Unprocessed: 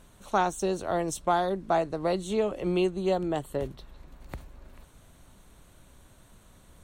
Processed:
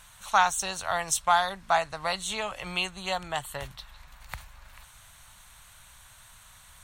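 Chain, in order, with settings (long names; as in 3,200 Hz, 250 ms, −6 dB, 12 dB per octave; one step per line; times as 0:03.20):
drawn EQ curve 120 Hz 0 dB, 350 Hz −18 dB, 850 Hz +7 dB, 1,800 Hz +12 dB
level −2.5 dB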